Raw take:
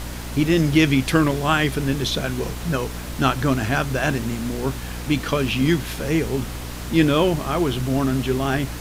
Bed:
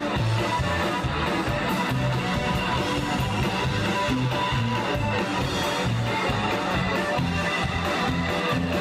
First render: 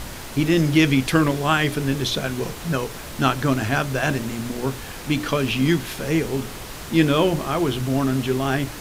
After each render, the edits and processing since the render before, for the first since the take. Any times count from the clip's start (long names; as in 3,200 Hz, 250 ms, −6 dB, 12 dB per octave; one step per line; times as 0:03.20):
hum removal 60 Hz, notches 10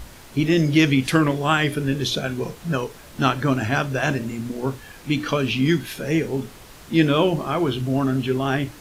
noise reduction from a noise print 9 dB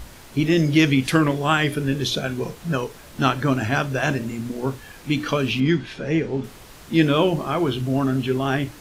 0:05.60–0:06.44: high-frequency loss of the air 120 metres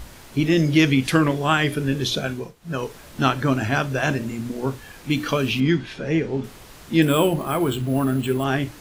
0:02.29–0:02.85: duck −15 dB, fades 0.24 s
0:05.10–0:05.66: high-shelf EQ 11,000 Hz +9 dB
0:07.02–0:08.44: bad sample-rate conversion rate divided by 4×, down filtered, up hold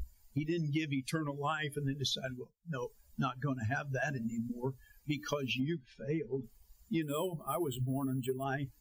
spectral dynamics exaggerated over time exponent 2
downward compressor 16 to 1, threshold −31 dBFS, peak gain reduction 18.5 dB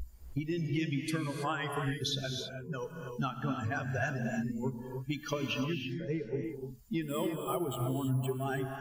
reverb whose tail is shaped and stops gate 350 ms rising, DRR 3 dB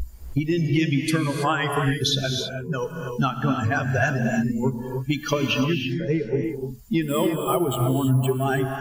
level +11.5 dB